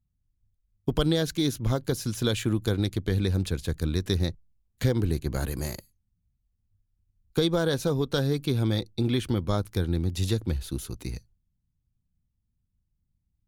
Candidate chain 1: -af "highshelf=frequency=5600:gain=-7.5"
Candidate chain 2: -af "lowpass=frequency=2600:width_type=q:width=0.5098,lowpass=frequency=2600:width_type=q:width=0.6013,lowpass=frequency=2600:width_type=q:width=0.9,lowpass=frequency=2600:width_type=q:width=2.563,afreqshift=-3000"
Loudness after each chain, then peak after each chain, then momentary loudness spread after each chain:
−28.0, −24.0 LKFS; −10.5, −10.5 dBFS; 9, 9 LU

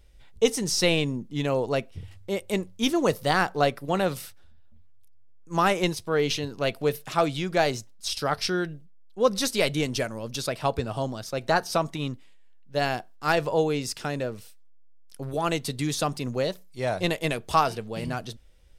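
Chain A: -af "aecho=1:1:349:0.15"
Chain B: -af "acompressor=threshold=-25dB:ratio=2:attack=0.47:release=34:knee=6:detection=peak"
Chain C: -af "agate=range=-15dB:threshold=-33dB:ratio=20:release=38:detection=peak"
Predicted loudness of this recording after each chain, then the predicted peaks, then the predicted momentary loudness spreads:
−26.5, −30.5, −27.0 LKFS; −8.0, −14.5, −8.0 dBFS; 10, 8, 10 LU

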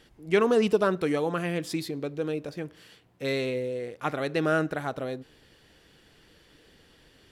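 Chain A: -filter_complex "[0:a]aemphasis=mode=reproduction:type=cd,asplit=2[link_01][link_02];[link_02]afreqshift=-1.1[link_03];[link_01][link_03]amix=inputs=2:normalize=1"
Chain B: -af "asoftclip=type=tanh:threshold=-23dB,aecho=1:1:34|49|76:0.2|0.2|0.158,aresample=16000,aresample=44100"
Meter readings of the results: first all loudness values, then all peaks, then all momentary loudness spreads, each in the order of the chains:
−31.5, −31.5 LKFS; −12.5, −19.5 dBFS; 14, 9 LU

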